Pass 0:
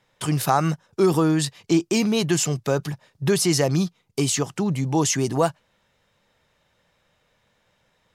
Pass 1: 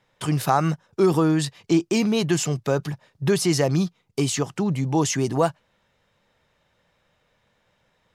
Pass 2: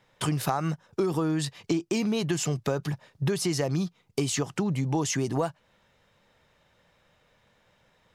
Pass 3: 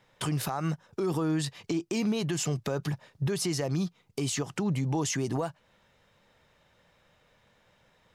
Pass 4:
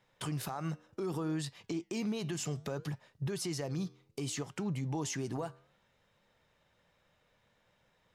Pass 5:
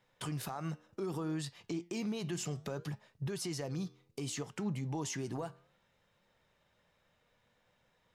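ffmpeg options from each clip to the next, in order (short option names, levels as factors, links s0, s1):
-af "highshelf=f=4900:g=-5.5"
-af "acompressor=threshold=0.0501:ratio=6,volume=1.26"
-af "alimiter=limit=0.0891:level=0:latency=1:release=83"
-af "flanger=delay=5.4:depth=6.2:regen=-89:speed=0.64:shape=sinusoidal,volume=0.75"
-af "flanger=delay=4:depth=1.8:regen=89:speed=0.26:shape=sinusoidal,volume=1.41"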